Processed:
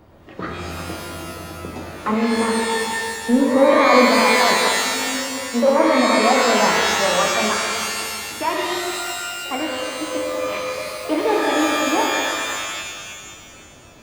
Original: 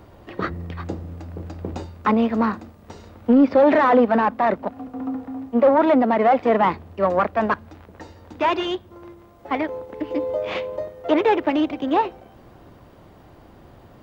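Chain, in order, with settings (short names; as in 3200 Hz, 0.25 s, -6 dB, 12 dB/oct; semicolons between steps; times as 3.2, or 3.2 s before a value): shimmer reverb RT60 2 s, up +12 st, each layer -2 dB, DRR -0.5 dB; gain -4 dB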